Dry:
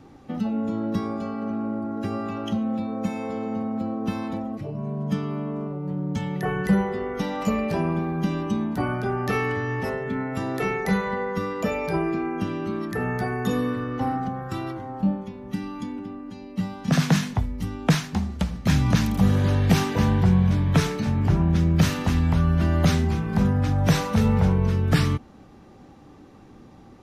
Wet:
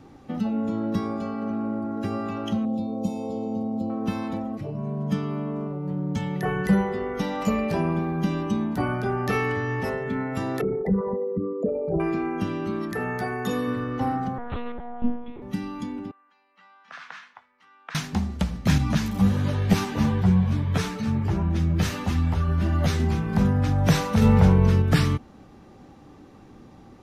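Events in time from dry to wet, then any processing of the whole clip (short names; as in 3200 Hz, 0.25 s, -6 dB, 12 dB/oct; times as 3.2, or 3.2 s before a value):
2.65–3.9 Butterworth band-stop 1700 Hz, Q 0.64
10.61–12 formant sharpening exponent 3
12.93–13.68 low shelf 180 Hz -8.5 dB
14.38–15.42 monotone LPC vocoder at 8 kHz 240 Hz
16.11–17.95 ladder band-pass 1600 Hz, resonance 35%
18.78–23 ensemble effect
24.22–24.82 gain +3.5 dB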